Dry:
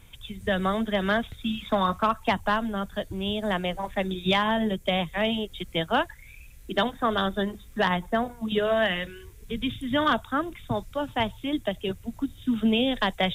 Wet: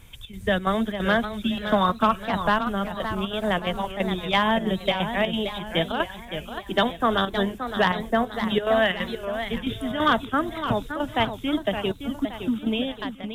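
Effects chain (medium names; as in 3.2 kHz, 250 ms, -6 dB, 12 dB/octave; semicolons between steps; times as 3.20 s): fade out at the end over 1.16 s; square tremolo 3 Hz, depth 65%, duty 75%; modulated delay 570 ms, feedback 45%, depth 166 cents, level -9 dB; trim +3 dB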